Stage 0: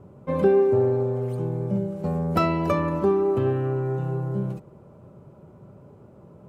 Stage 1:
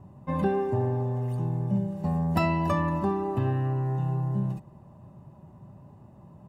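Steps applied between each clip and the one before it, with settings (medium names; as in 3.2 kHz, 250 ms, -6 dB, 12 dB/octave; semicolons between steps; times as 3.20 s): comb 1.1 ms, depth 72%; trim -3.5 dB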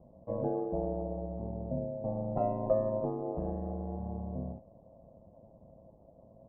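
resonant low-pass 600 Hz, resonance Q 7; ring modulator 54 Hz; trim -8.5 dB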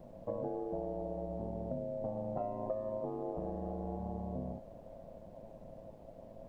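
bass shelf 180 Hz -8 dB; compression 5:1, threshold -43 dBFS, peak gain reduction 17.5 dB; added noise brown -66 dBFS; trim +7 dB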